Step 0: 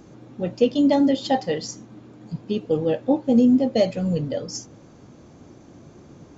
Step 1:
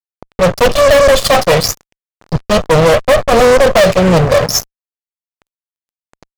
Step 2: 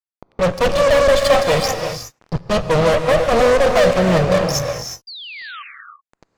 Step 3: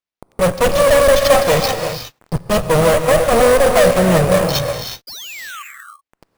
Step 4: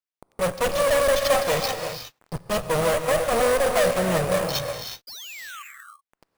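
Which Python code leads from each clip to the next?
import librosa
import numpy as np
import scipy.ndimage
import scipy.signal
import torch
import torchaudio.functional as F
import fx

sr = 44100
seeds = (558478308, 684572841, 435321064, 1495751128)

y1 = fx.lower_of_two(x, sr, delay_ms=1.5)
y1 = y1 + 0.78 * np.pad(y1, (int(1.7 * sr / 1000.0), 0))[:len(y1)]
y1 = fx.fuzz(y1, sr, gain_db=28.0, gate_db=-34.0)
y1 = y1 * librosa.db_to_amplitude(8.0)
y2 = fx.high_shelf(y1, sr, hz=10000.0, db=-10.0)
y2 = fx.spec_paint(y2, sr, seeds[0], shape='fall', start_s=5.07, length_s=0.56, low_hz=1100.0, high_hz=4900.0, level_db=-27.0)
y2 = fx.rev_gated(y2, sr, seeds[1], gate_ms=390, shape='rising', drr_db=5.0)
y2 = y2 * librosa.db_to_amplitude(-6.5)
y3 = fx.sample_hold(y2, sr, seeds[2], rate_hz=9700.0, jitter_pct=0)
y3 = y3 * librosa.db_to_amplitude(2.0)
y4 = fx.low_shelf(y3, sr, hz=430.0, db=-5.5)
y4 = y4 * librosa.db_to_amplitude(-7.0)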